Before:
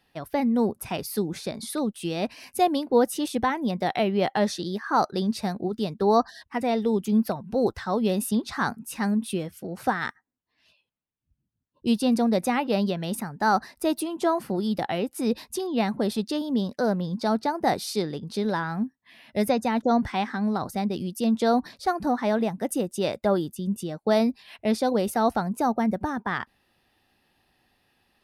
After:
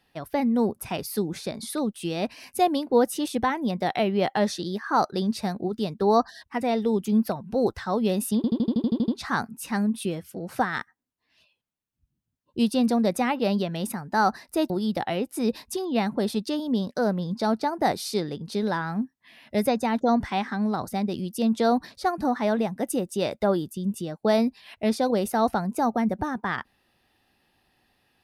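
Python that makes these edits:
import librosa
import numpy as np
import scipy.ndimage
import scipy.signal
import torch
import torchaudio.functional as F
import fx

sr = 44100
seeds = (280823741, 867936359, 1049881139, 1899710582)

y = fx.edit(x, sr, fx.stutter(start_s=8.36, slice_s=0.08, count=10),
    fx.cut(start_s=13.98, length_s=0.54), tone=tone)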